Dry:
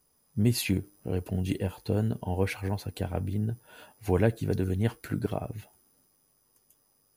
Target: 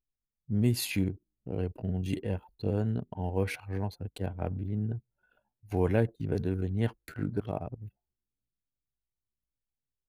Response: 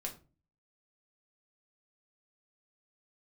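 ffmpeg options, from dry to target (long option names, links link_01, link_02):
-af "anlmdn=0.251,atempo=0.71,volume=-2.5dB"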